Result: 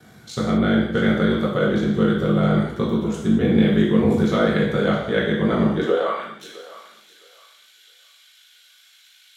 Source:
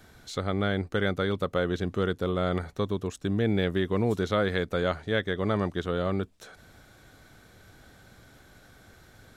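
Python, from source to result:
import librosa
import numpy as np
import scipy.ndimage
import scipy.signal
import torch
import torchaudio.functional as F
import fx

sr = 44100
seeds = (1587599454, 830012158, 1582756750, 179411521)

p1 = fx.filter_sweep_highpass(x, sr, from_hz=160.0, to_hz=3000.0, start_s=5.7, end_s=6.31, q=2.9)
p2 = p1 * np.sin(2.0 * np.pi * 26.0 * np.arange(len(p1)) / sr)
p3 = p2 + fx.echo_thinned(p2, sr, ms=661, feedback_pct=30, hz=710.0, wet_db=-15.5, dry=0)
p4 = fx.rev_gated(p3, sr, seeds[0], gate_ms=250, shape='falling', drr_db=-4.5)
y = F.gain(torch.from_numpy(p4), 2.5).numpy()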